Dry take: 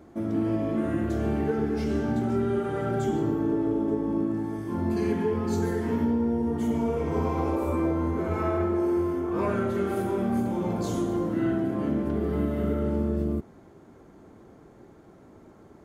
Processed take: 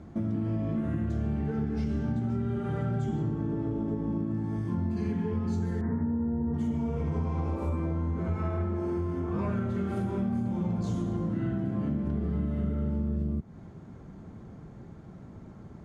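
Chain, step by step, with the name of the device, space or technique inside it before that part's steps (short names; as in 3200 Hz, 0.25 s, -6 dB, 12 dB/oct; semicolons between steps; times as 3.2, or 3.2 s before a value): jukebox (LPF 7200 Hz 12 dB/oct; resonant low shelf 240 Hz +9 dB, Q 1.5; compressor 4:1, threshold -28 dBFS, peak gain reduction 11 dB); 5.81–6.54 steep low-pass 2000 Hz 72 dB/oct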